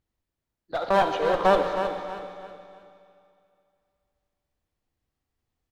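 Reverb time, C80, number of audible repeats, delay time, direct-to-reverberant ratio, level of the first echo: 2.5 s, 4.0 dB, 3, 319 ms, 3.0 dB, −8.5 dB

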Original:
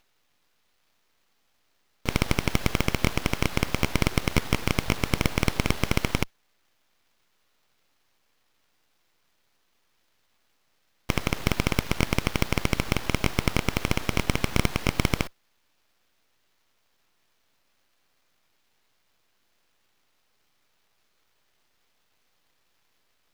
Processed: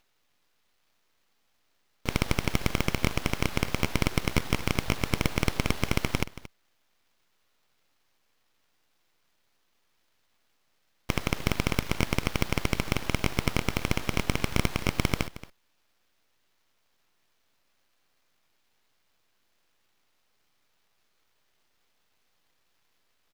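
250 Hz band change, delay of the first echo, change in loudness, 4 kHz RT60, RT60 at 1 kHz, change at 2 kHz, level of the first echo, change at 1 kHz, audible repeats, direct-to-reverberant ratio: −2.5 dB, 227 ms, −2.5 dB, no reverb audible, no reverb audible, −2.5 dB, −16.0 dB, −2.5 dB, 1, no reverb audible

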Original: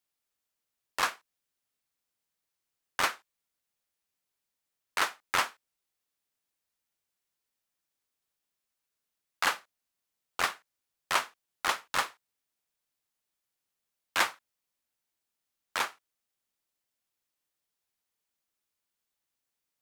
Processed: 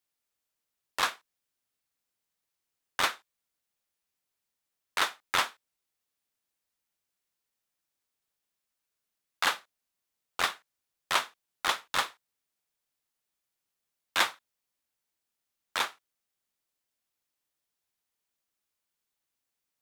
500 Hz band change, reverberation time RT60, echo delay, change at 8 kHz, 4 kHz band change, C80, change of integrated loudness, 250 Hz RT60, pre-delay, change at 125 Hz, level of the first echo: 0.0 dB, no reverb audible, no echo audible, 0.0 dB, +3.5 dB, no reverb audible, +1.0 dB, no reverb audible, no reverb audible, 0.0 dB, no echo audible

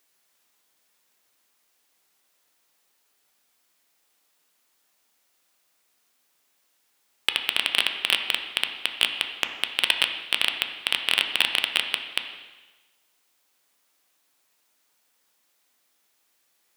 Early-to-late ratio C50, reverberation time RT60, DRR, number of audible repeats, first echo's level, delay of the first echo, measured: 7.5 dB, 1.2 s, 5.0 dB, no echo audible, no echo audible, no echo audible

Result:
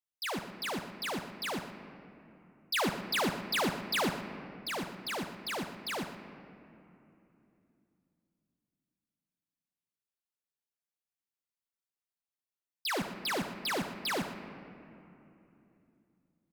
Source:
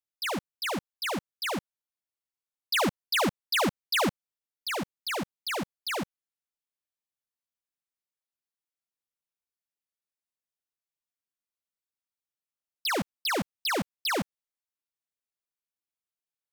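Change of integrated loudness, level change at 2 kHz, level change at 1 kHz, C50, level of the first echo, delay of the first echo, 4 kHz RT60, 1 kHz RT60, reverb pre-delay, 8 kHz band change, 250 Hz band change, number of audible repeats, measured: −4.5 dB, −4.5 dB, −4.0 dB, 7.5 dB, −11.5 dB, 116 ms, 1.6 s, 2.8 s, 5 ms, −4.5 dB, −4.0 dB, 1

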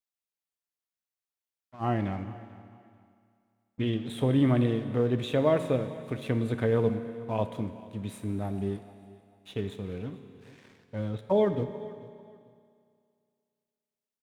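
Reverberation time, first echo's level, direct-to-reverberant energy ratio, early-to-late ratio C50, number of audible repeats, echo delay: 2.3 s, −21.0 dB, 8.0 dB, 9.5 dB, 2, 442 ms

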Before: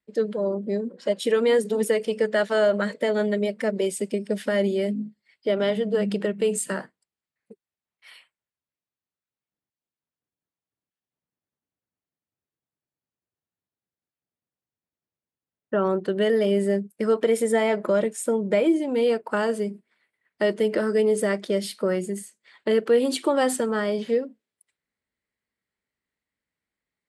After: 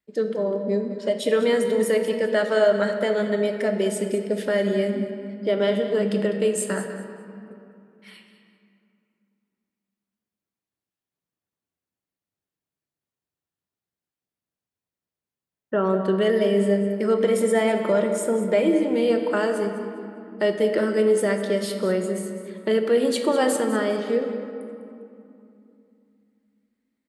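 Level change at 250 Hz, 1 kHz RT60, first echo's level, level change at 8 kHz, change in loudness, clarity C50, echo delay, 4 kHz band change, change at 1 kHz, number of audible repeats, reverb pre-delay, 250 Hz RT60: +2.0 dB, 2.8 s, −13.5 dB, +0.5 dB, +1.5 dB, 6.0 dB, 201 ms, +1.0 dB, +1.0 dB, 1, 3 ms, 3.7 s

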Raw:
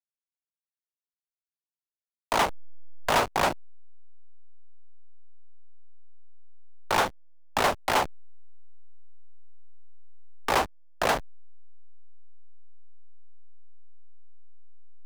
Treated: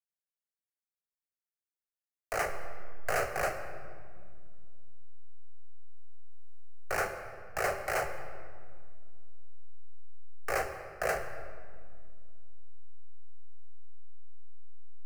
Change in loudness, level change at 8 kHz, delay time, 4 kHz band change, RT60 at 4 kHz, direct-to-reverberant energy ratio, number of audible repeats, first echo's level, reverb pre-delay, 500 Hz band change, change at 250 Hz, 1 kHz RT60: −8.0 dB, −6.5 dB, no echo audible, −15.0 dB, 1.3 s, 6.0 dB, no echo audible, no echo audible, 4 ms, −4.5 dB, −13.0 dB, 1.9 s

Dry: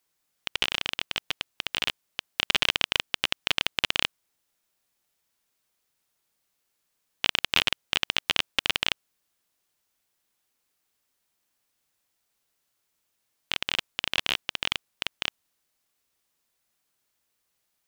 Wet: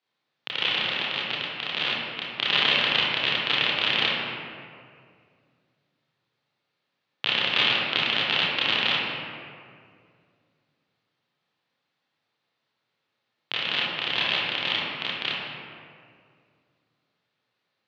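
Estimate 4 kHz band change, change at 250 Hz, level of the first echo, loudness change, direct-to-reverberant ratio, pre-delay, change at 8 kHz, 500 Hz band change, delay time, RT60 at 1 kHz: +3.5 dB, +6.0 dB, no echo audible, +3.5 dB, −7.0 dB, 27 ms, below −10 dB, +6.0 dB, no echo audible, 2.0 s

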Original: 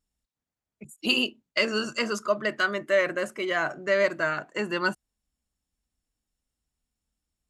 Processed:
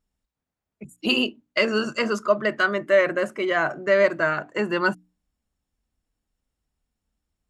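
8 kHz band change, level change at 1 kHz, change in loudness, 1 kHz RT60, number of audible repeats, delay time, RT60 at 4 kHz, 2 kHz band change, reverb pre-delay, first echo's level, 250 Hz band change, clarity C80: can't be measured, +4.5 dB, +4.0 dB, no reverb audible, no echo audible, no echo audible, no reverb audible, +3.0 dB, no reverb audible, no echo audible, +5.0 dB, no reverb audible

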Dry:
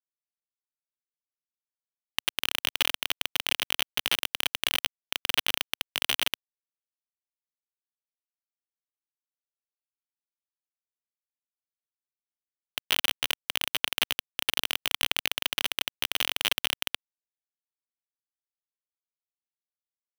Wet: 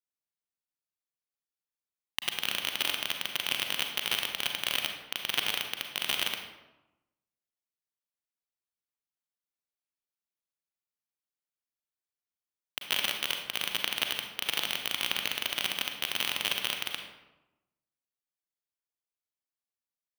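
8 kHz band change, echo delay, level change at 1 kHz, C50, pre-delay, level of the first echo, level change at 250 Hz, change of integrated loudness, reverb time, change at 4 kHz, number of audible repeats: −2.5 dB, no echo audible, −2.0 dB, 5.0 dB, 34 ms, no echo audible, −1.5 dB, −2.5 dB, 1.0 s, −2.5 dB, no echo audible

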